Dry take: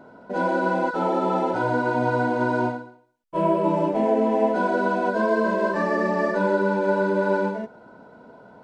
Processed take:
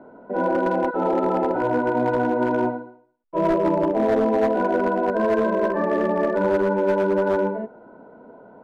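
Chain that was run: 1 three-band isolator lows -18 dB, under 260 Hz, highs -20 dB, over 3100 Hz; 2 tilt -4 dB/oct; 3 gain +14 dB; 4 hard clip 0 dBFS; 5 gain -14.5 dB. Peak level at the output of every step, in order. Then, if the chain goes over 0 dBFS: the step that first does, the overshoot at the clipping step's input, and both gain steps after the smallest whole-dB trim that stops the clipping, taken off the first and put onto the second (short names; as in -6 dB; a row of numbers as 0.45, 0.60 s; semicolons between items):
-9.5, -6.5, +7.5, 0.0, -14.5 dBFS; step 3, 7.5 dB; step 3 +6 dB, step 5 -6.5 dB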